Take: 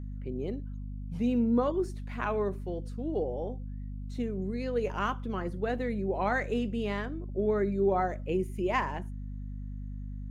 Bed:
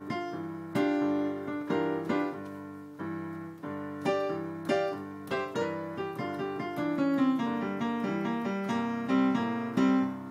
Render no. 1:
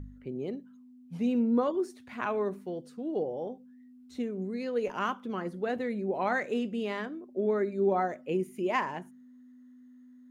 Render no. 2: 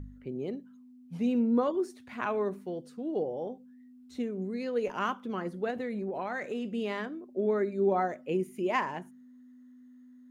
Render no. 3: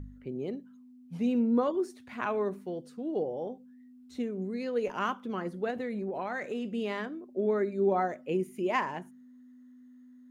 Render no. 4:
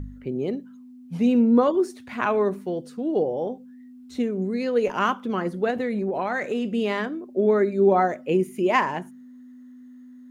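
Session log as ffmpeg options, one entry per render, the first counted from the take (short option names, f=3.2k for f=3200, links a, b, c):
-af "bandreject=f=50:t=h:w=4,bandreject=f=100:t=h:w=4,bandreject=f=150:t=h:w=4,bandreject=f=200:t=h:w=4"
-filter_complex "[0:a]asettb=1/sr,asplit=3[a][b][c];[a]atrim=end=5.704[d];[b]atrim=start=5.7:end=6.69,asetpts=PTS-STARTPTS,afade=t=in:d=0.004:c=qsin,afade=t=out:st=0.986:d=0.004:c=qsin,acompressor=threshold=-30dB:ratio=6:attack=3.2:release=140:knee=1:detection=peak[e];[c]atrim=start=6.686[f];[d][e]acrossfade=d=0.004:c1=hsin:c2=qsin[g];[g][f]acrossfade=d=0.004:c1=qsin:c2=hsin"
-af anull
-af "volume=8.5dB"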